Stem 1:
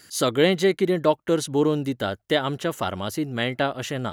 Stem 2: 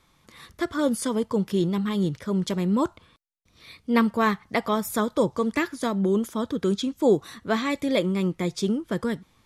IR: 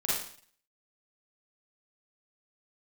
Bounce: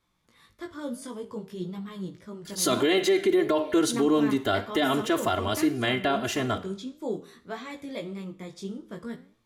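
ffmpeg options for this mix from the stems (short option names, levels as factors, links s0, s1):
-filter_complex "[0:a]aecho=1:1:2.9:0.94,adelay=2450,volume=1.41,asplit=2[s0][s1];[s1]volume=0.0891[s2];[1:a]flanger=delay=16:depth=4.9:speed=0.53,volume=0.562,asplit=2[s3][s4];[s4]volume=0.0841[s5];[2:a]atrim=start_sample=2205[s6];[s2][s5]amix=inputs=2:normalize=0[s7];[s7][s6]afir=irnorm=-1:irlink=0[s8];[s0][s3][s8]amix=inputs=3:normalize=0,flanger=delay=8.5:depth=4.6:regen=84:speed=1.7:shape=triangular,alimiter=limit=0.188:level=0:latency=1:release=29"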